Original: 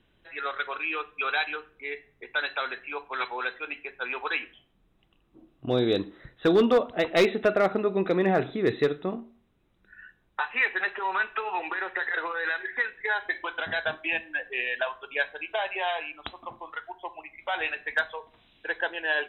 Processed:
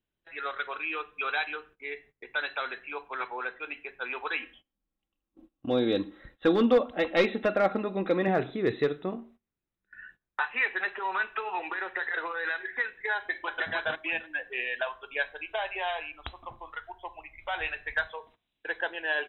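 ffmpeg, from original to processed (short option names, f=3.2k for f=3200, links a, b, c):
-filter_complex "[0:a]asettb=1/sr,asplit=3[a][b][c];[a]atrim=end=3.144[d];[b]atrim=start=3.14:end=3.6,asetpts=PTS-STARTPTS,afade=t=in:d=0.004:c=qsin,afade=t=out:st=0.456:d=0.004:c=qsin,lowpass=2.1k[e];[c]atrim=start=3.596[f];[d][e]acrossfade=d=0.004:c1=hsin:c2=qsin[g];[g][f]acrossfade=d=0.004:c1=qsin:c2=hsin,asettb=1/sr,asplit=3[h][i][j];[h]atrim=end=4.384[k];[i]atrim=start=4.38:end=8.28,asetpts=PTS-STARTPTS,afade=t=in:d=0.004:c=qsin,afade=t=out:st=3.896:d=0.004:c=qsin,aecho=1:1:3.7:0.53,atrim=end_sample=171990[l];[j]atrim=start=8.276[m];[k][l]acrossfade=d=0.004:c1=hsin:c2=qsin[n];[n][m]acrossfade=d=0.004:c1=qsin:c2=hsin,asettb=1/sr,asplit=3[o][p][q];[o]atrim=end=9.204[r];[p]atrim=start=9.2:end=10.5,asetpts=PTS-STARTPTS,afade=t=in:d=0.004:c=qsin,afade=t=out:st=1.296:d=0.004:c=qsin,equalizer=f=1.8k:w=1.5:g=4.5[s];[q]atrim=start=10.496[t];[r][s]acrossfade=d=0.004:c1=hsin:c2=qsin[u];[u][t]acrossfade=d=0.004:c1=qsin:c2=hsin,asplit=2[v][w];[w]afade=t=in:st=13.16:d=0.01,afade=t=out:st=13.64:d=0.01,aecho=0:1:310|620|930:0.841395|0.126209|0.0189314[x];[v][x]amix=inputs=2:normalize=0,asettb=1/sr,asplit=3[y][z][aa];[y]atrim=end=14.624[ab];[z]atrim=start=14.62:end=18.07,asetpts=PTS-STARTPTS,afade=t=in:d=0.004:c=qsin,afade=t=out:st=3.446:d=0.004:c=qsin,asubboost=boost=11:cutoff=82[ac];[aa]atrim=start=18.066[ad];[ab][ac]acrossfade=d=0.004:c1=hsin:c2=qsin[ae];[ae][ad]acrossfade=d=0.004:c1=qsin:c2=hsin,agate=range=-19dB:threshold=-51dB:ratio=16:detection=peak,acrossover=split=4600[af][ag];[ag]acompressor=threshold=-54dB:ratio=4:attack=1:release=60[ah];[af][ah]amix=inputs=2:normalize=0,volume=-2.5dB"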